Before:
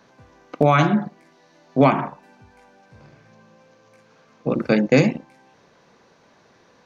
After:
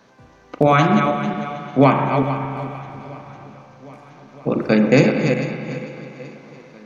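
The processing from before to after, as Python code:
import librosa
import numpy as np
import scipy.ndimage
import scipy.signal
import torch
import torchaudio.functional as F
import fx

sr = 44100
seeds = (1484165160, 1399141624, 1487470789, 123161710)

y = fx.reverse_delay_fb(x, sr, ms=223, feedback_pct=51, wet_db=-6.5)
y = fx.echo_swing(y, sr, ms=1275, ratio=1.5, feedback_pct=51, wet_db=-22.5)
y = fx.rev_spring(y, sr, rt60_s=2.8, pass_ms=(37,), chirp_ms=75, drr_db=6.0)
y = y * librosa.db_to_amplitude(1.5)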